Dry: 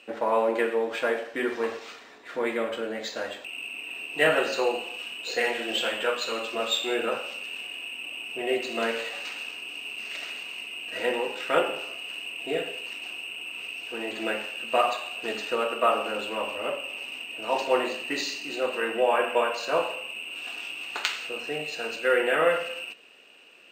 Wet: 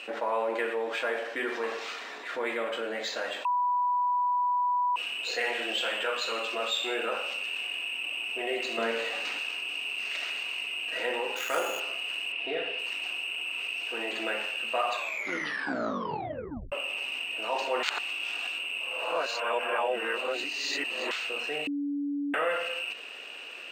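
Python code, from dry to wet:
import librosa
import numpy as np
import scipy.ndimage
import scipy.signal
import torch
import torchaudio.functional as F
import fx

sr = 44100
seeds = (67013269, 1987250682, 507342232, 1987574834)

y = fx.low_shelf(x, sr, hz=410.0, db=11.0, at=(8.78, 9.39))
y = fx.sample_hold(y, sr, seeds[0], rate_hz=9500.0, jitter_pct=0, at=(11.36, 11.8))
y = fx.savgol(y, sr, points=15, at=(12.32, 12.79))
y = fx.edit(y, sr, fx.bleep(start_s=3.45, length_s=1.51, hz=984.0, db=-18.0),
    fx.tape_stop(start_s=14.93, length_s=1.79),
    fx.reverse_span(start_s=17.83, length_s=3.28),
    fx.bleep(start_s=21.67, length_s=0.67, hz=286.0, db=-21.0), tone=tone)
y = fx.highpass(y, sr, hz=660.0, slope=6)
y = fx.high_shelf(y, sr, hz=6300.0, db=-7.0)
y = fx.env_flatten(y, sr, amount_pct=50)
y = y * librosa.db_to_amplitude(-4.5)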